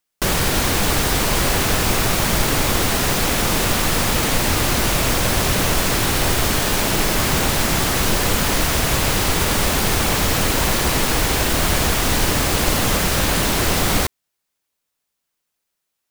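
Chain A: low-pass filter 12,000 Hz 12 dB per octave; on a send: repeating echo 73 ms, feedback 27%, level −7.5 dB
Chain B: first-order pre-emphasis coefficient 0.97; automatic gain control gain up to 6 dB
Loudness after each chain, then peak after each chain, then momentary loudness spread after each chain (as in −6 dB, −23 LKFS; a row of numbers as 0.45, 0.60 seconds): −18.0, −13.5 LKFS; −3.5, −3.5 dBFS; 0, 1 LU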